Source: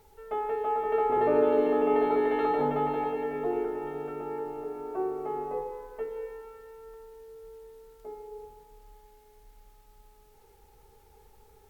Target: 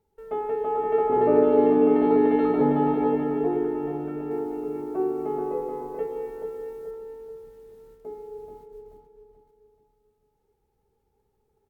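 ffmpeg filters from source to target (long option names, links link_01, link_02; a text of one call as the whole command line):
ffmpeg -i in.wav -filter_complex "[0:a]equalizer=frequency=200:width_type=o:width=2.8:gain=12.5,agate=range=-17dB:threshold=-47dB:ratio=16:detection=peak,asettb=1/sr,asplit=3[link_01][link_02][link_03];[link_01]atrim=end=4.314[link_04];[link_02]atrim=start=4.31:end=6.91,asetpts=PTS-STARTPTS,afade=type=in:duration=0.004:curve=qsin,afade=type=out:start_time=2.596:duration=0.004:curve=qsin,highshelf=frequency=3600:gain=7[link_05];[link_03]atrim=start=6.906[link_06];[link_04][link_05]acrossfade=duration=0.004:curve1=hsin:curve2=qsin[link_07];[link_07][link_06]acrossfade=duration=0.004:curve1=qsin:curve2=hsin,asplit=2[link_08][link_09];[link_09]adelay=432,lowpass=frequency=2300:poles=1,volume=-5.5dB,asplit=2[link_10][link_11];[link_11]adelay=432,lowpass=frequency=2300:poles=1,volume=0.41,asplit=2[link_12][link_13];[link_13]adelay=432,lowpass=frequency=2300:poles=1,volume=0.41,asplit=2[link_14][link_15];[link_15]adelay=432,lowpass=frequency=2300:poles=1,volume=0.41,asplit=2[link_16][link_17];[link_17]adelay=432,lowpass=frequency=2300:poles=1,volume=0.41[link_18];[link_08][link_10][link_12][link_14][link_16][link_18]amix=inputs=6:normalize=0,volume=-3.5dB" out.wav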